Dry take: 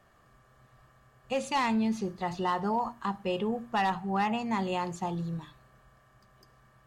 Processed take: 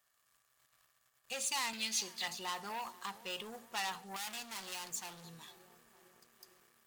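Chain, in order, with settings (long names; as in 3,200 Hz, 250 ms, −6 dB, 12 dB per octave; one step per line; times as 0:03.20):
0:01.73–0:02.28: meter weighting curve D
feedback echo with a band-pass in the loop 456 ms, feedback 83%, band-pass 340 Hz, level −17.5 dB
0:04.16–0:05.24: hard clipping −36.5 dBFS, distortion −9 dB
leveller curve on the samples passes 2
first-order pre-emphasis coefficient 0.97
level +1 dB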